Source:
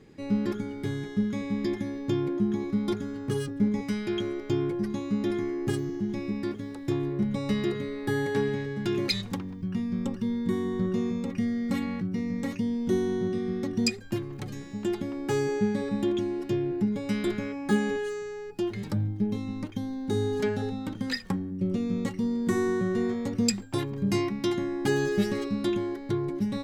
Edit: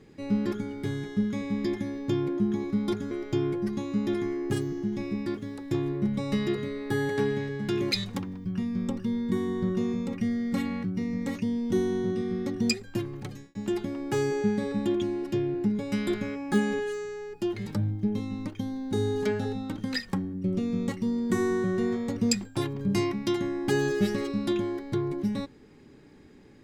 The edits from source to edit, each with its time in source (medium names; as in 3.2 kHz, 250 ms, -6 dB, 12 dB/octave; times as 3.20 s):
3.11–4.28 s: delete
14.39–14.72 s: fade out